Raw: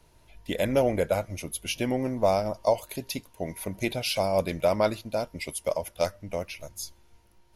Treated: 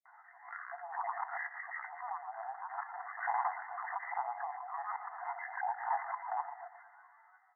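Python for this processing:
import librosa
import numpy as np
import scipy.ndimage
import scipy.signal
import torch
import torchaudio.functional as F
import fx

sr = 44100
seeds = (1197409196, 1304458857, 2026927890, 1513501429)

y = fx.spec_steps(x, sr, hold_ms=100)
y = fx.over_compress(y, sr, threshold_db=-37.0, ratio=-1.0)
y = np.clip(10.0 ** (31.0 / 20.0) * y, -1.0, 1.0) / 10.0 ** (31.0 / 20.0)
y = fx.rotary_switch(y, sr, hz=5.5, then_hz=1.0, switch_at_s=2.75)
y = fx.granulator(y, sr, seeds[0], grain_ms=100.0, per_s=20.0, spray_ms=100.0, spread_st=12)
y = fx.brickwall_bandpass(y, sr, low_hz=680.0, high_hz=2100.0)
y = fx.echo_feedback(y, sr, ms=117, feedback_pct=54, wet_db=-14.0)
y = fx.pre_swell(y, sr, db_per_s=110.0)
y = y * 10.0 ** (8.5 / 20.0)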